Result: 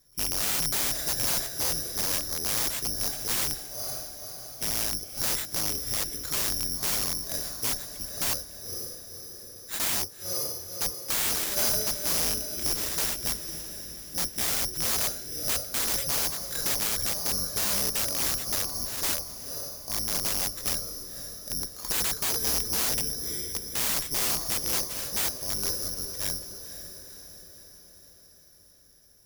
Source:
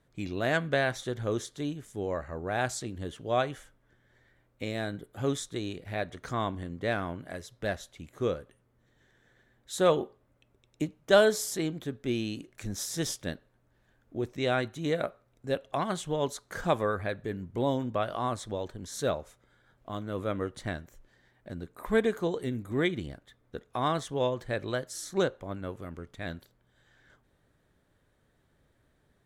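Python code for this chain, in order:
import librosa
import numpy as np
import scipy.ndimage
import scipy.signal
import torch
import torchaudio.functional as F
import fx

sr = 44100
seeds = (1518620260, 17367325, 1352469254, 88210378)

p1 = fx.octave_divider(x, sr, octaves=2, level_db=0.0)
p2 = fx.comb(p1, sr, ms=1.6, depth=0.94, at=(15.02, 15.68))
p3 = (np.kron(p2[::8], np.eye(8)[0]) * 8)[:len(p2)]
p4 = p3 + fx.echo_diffused(p3, sr, ms=519, feedback_pct=56, wet_db=-11.5, dry=0)
p5 = (np.mod(10.0 ** (8.5 / 20.0) * p4 + 1.0, 2.0) - 1.0) / 10.0 ** (8.5 / 20.0)
y = p5 * librosa.db_to_amplitude(-4.5)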